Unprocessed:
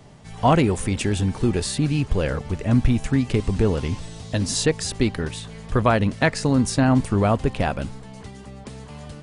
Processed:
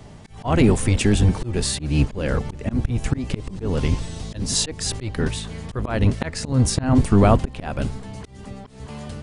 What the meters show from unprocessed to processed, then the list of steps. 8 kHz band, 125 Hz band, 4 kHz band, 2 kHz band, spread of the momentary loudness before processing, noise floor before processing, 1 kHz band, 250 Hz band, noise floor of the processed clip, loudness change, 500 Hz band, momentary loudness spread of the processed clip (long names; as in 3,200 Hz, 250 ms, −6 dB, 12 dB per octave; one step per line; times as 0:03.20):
+3.0 dB, +1.5 dB, +2.0 dB, −3.0 dB, 20 LU, −41 dBFS, −3.0 dB, −0.5 dB, −41 dBFS, 0.0 dB, −1.5 dB, 18 LU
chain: sub-octave generator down 1 octave, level −1 dB
volume swells 234 ms
level +3.5 dB